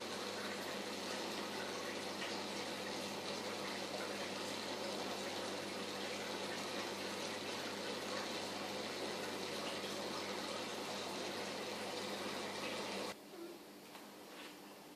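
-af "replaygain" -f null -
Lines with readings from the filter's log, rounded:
track_gain = +25.6 dB
track_peak = 0.024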